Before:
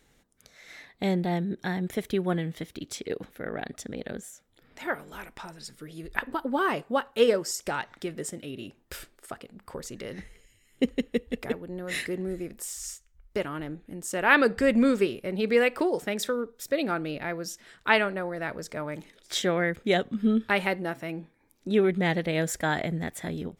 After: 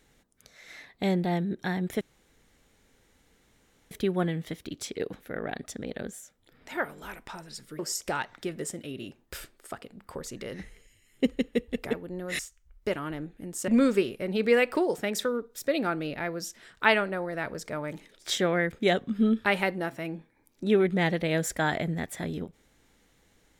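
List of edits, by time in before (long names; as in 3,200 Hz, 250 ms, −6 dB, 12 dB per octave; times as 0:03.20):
0:02.01: splice in room tone 1.90 s
0:05.89–0:07.38: remove
0:11.98–0:12.88: remove
0:14.17–0:14.72: remove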